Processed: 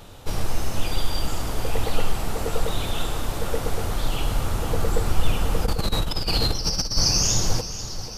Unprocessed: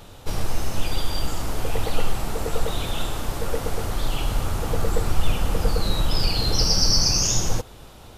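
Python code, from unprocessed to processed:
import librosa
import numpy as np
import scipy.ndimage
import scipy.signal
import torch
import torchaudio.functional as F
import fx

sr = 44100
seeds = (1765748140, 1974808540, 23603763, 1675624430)

p1 = x + fx.echo_feedback(x, sr, ms=486, feedback_pct=60, wet_db=-13.5, dry=0)
y = fx.over_compress(p1, sr, threshold_db=-21.0, ratio=-0.5, at=(5.65, 6.96), fade=0.02)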